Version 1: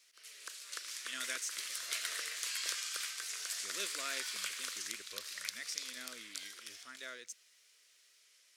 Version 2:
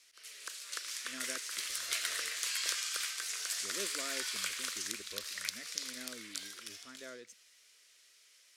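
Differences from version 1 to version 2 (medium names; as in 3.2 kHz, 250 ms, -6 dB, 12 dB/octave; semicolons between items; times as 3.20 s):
speech: add tilt shelf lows +9.5 dB, about 940 Hz; background +3.0 dB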